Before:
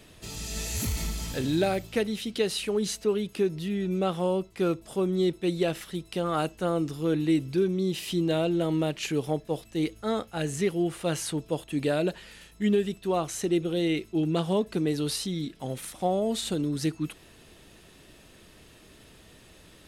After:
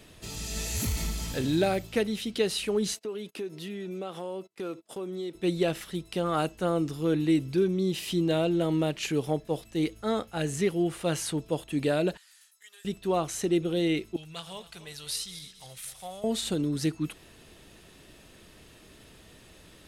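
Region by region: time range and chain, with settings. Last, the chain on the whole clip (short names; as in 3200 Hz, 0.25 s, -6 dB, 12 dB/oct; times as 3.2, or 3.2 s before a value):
2.94–5.35 HPF 260 Hz + gate -46 dBFS, range -26 dB + compressor 3:1, threshold -34 dBFS
12.17–12.85 Bessel high-pass 2000 Hz, order 4 + bell 2600 Hz -14.5 dB 1.4 oct
14.16–16.24 regenerating reverse delay 0.137 s, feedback 61%, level -13 dB + passive tone stack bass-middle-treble 10-0-10
whole clip: dry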